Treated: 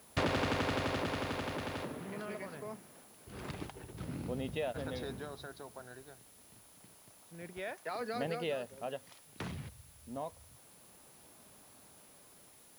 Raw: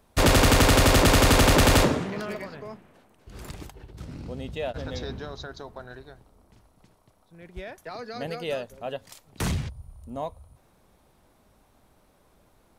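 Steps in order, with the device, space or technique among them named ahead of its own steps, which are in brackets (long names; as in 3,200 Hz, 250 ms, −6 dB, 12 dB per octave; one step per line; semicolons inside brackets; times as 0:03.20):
medium wave at night (band-pass filter 110–3,700 Hz; downward compressor, threshold −30 dBFS, peak gain reduction 13.5 dB; amplitude tremolo 0.26 Hz, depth 61%; steady tone 10,000 Hz −62 dBFS; white noise bed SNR 22 dB)
0:07.53–0:08.01: low-shelf EQ 250 Hz −11 dB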